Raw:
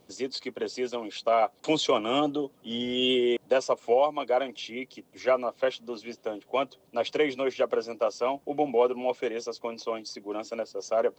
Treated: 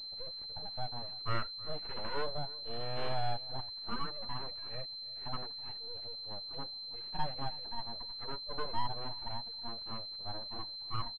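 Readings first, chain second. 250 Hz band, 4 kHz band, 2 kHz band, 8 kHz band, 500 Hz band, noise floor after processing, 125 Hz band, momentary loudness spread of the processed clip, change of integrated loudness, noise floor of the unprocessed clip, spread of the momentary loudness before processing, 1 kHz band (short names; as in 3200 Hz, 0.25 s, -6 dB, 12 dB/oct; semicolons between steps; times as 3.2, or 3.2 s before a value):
-18.5 dB, -3.0 dB, -12.0 dB, under -25 dB, -20.5 dB, -45 dBFS, +4.5 dB, 4 LU, -11.0 dB, -62 dBFS, 11 LU, -10.0 dB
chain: median-filter separation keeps harmonic; notch 600 Hz, Q 12; in parallel at -0.5 dB: compressor, threshold -37 dBFS, peak gain reduction 15.5 dB; on the sum: full-wave rectifier; outdoor echo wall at 55 m, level -20 dB; pulse-width modulation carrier 4100 Hz; gain -7 dB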